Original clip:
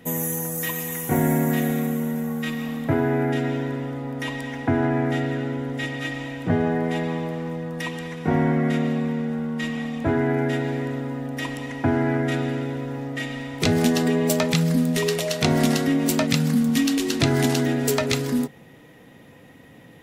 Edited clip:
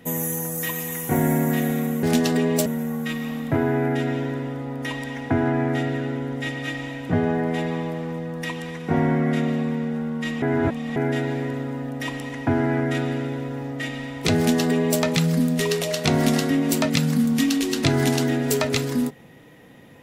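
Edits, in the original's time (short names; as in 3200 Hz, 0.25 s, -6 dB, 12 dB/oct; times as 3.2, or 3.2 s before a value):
9.79–10.33 reverse
13.74–14.37 copy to 2.03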